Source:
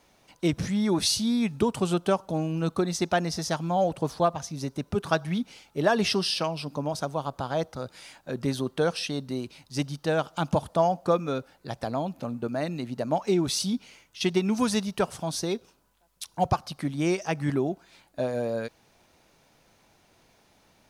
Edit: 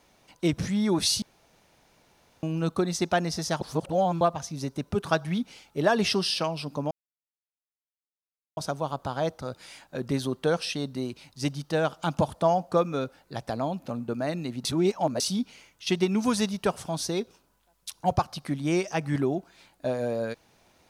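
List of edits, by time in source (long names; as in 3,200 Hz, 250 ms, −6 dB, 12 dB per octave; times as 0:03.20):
0:01.22–0:02.43: fill with room tone
0:03.61–0:04.21: reverse
0:06.91: splice in silence 1.66 s
0:12.99–0:13.54: reverse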